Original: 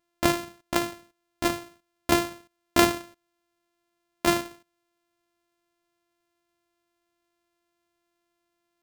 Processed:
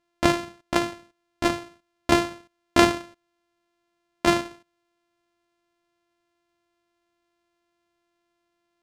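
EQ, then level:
high-frequency loss of the air 52 metres
+3.0 dB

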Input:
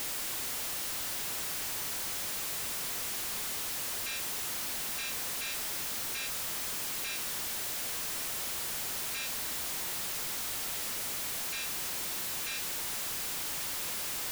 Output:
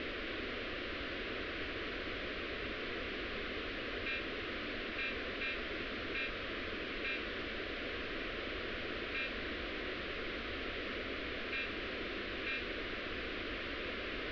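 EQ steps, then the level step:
Bessel low-pass filter 2,700 Hz, order 6
high-frequency loss of the air 320 metres
phaser with its sweep stopped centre 360 Hz, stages 4
+10.0 dB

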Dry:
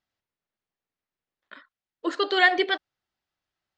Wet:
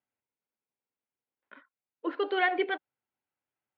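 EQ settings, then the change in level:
loudspeaker in its box 150–2,300 Hz, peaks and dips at 180 Hz −8 dB, 350 Hz −5 dB, 660 Hz −7 dB, 1,200 Hz −8 dB, 1,800 Hz −9 dB
0.0 dB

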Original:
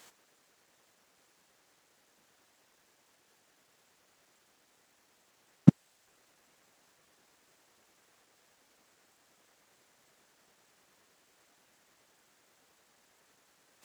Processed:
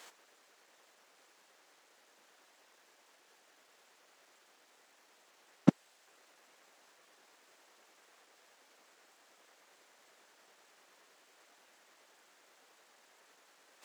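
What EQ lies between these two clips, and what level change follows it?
high-pass filter 370 Hz 12 dB per octave
high-shelf EQ 7,100 Hz −7.5 dB
+4.5 dB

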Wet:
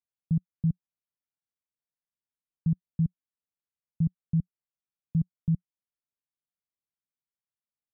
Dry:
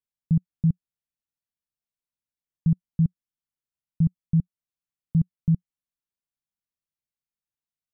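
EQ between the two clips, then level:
high-pass filter 51 Hz 6 dB per octave
high-frequency loss of the air 500 metres
−4.0 dB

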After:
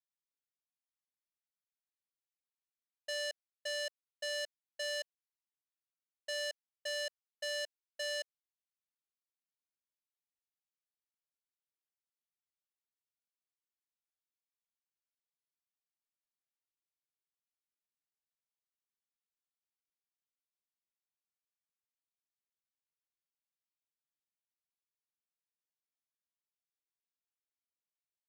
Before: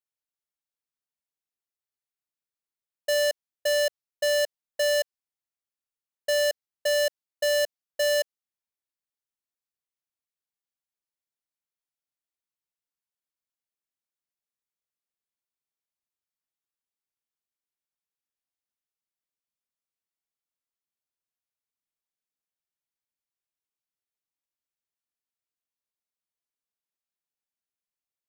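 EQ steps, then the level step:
first difference
head-to-tape spacing loss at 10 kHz 24 dB
+5.5 dB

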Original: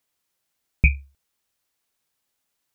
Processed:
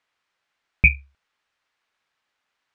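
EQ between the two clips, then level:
high-frequency loss of the air 88 metres
parametric band 1,600 Hz +13 dB 2.9 octaves
−3.5 dB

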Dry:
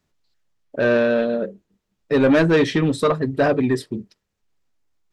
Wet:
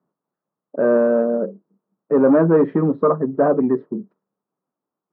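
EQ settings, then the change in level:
Chebyshev band-pass filter 170–1,200 Hz, order 3
+2.5 dB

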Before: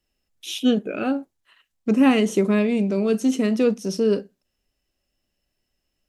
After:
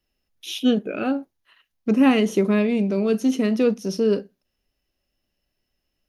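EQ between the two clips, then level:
parametric band 7,800 Hz −14 dB 0.23 octaves
0.0 dB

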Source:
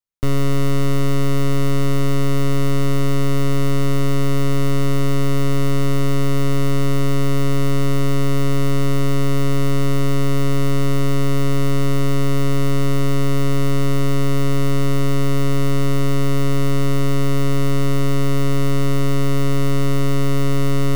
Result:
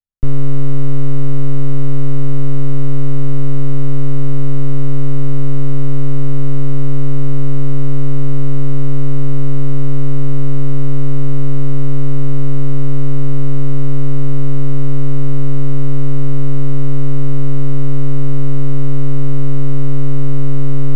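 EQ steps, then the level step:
RIAA equalisation playback
−9.0 dB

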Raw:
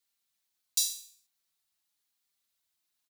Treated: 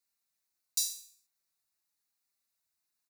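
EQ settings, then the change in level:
parametric band 3,200 Hz −14 dB 0.25 octaves
−2.5 dB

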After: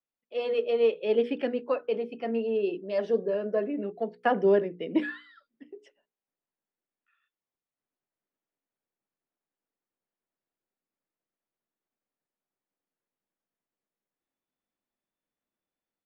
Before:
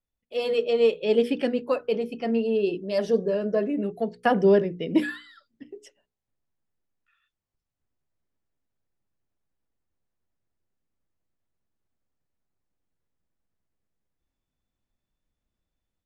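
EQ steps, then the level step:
high-frequency loss of the air 68 metres
three-way crossover with the lows and the highs turned down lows −17 dB, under 180 Hz, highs −12 dB, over 3,500 Hz
low-shelf EQ 150 Hz −7 dB
−2.0 dB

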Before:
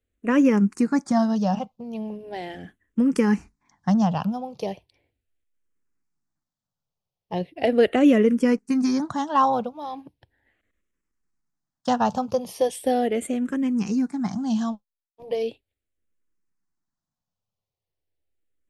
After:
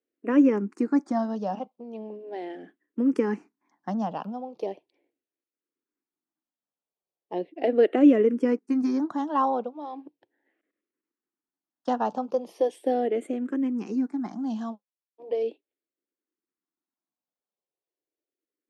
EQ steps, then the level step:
four-pole ladder high-pass 270 Hz, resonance 50%
low-pass filter 2,000 Hz 6 dB per octave
+4.5 dB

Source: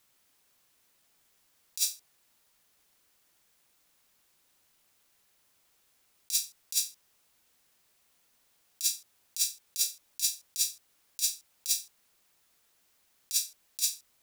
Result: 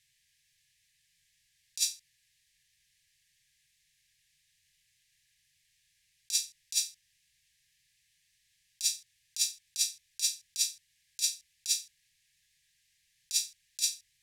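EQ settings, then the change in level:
linear-phase brick-wall band-stop 170–1,600 Hz
Bessel low-pass filter 7,700 Hz, order 2
+2.0 dB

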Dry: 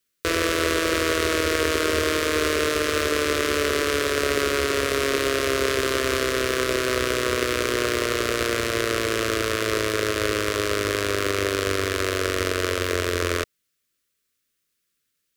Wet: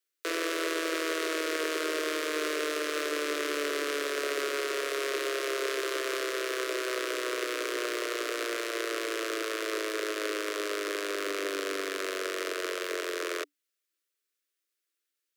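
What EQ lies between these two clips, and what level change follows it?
Chebyshev high-pass filter 290 Hz, order 10
−8.0 dB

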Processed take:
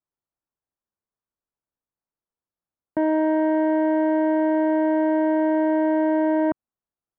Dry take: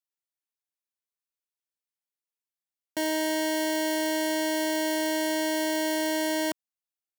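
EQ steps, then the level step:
low-pass filter 1,400 Hz 24 dB per octave
low-shelf EQ 270 Hz +7 dB
+6.0 dB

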